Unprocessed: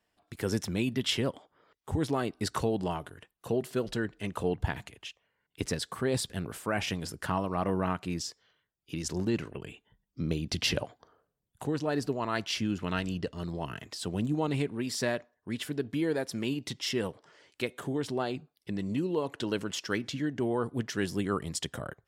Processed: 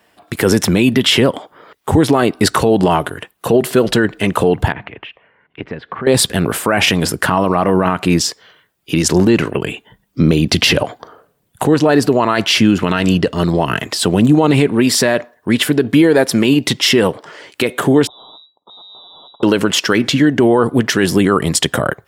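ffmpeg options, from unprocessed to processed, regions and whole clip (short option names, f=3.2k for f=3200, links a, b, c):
-filter_complex "[0:a]asettb=1/sr,asplit=3[a][b][c];[a]atrim=end=4.724[d];[b]atrim=start=4.72:end=6.07,asetpts=PTS-STARTPTS,afade=t=in:d=0.004:c=qsin,afade=t=out:st=1.346:d=0.004:c=qsin,acompressor=threshold=-48dB:ratio=3:attack=3.2:release=140:knee=1:detection=peak,lowpass=f=2.6k:w=0.5412,lowpass=f=2.6k:w=1.3066[e];[c]atrim=start=6.066[f];[d][e]acrossfade=d=0.004:c1=hsin:c2=qsin[g];[g][f]acrossfade=d=0.004:c1=qsin:c2=hsin,asettb=1/sr,asplit=3[h][i][j];[h]atrim=end=18.074[k];[i]atrim=start=18.07:end=19.43,asetpts=PTS-STARTPTS,afade=t=in:d=0.004:c=qsin,afade=t=out:st=1.356:d=0.004:c=qsin,aeval=exprs='(tanh(224*val(0)+0.45)-tanh(0.45))/224':c=same,lowpass=f=3.3k:t=q:w=0.5098,lowpass=f=3.3k:t=q:w=0.6013,lowpass=f=3.3k:t=q:w=0.9,lowpass=f=3.3k:t=q:w=2.563,afreqshift=-3900,asuperstop=centerf=2200:order=8:qfactor=0.61[l];[j]atrim=start=19.426[m];[k][l]acrossfade=d=0.004:c1=hsin:c2=qsin[n];[n][m]acrossfade=d=0.004:c1=qsin:c2=hsin,highpass=f=180:p=1,equalizer=f=5.8k:t=o:w=1.2:g=-5,alimiter=level_in=25dB:limit=-1dB:release=50:level=0:latency=1,volume=-1dB"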